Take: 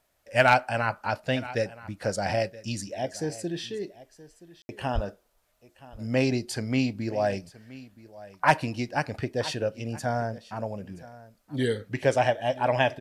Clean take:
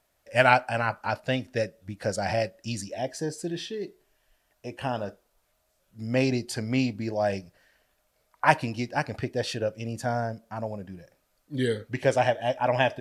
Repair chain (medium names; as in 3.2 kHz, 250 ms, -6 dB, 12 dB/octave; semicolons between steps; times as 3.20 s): clip repair -7.5 dBFS; 4.94–5.06 s: high-pass 140 Hz 24 dB/octave; room tone fill 4.62–4.69 s; inverse comb 974 ms -19 dB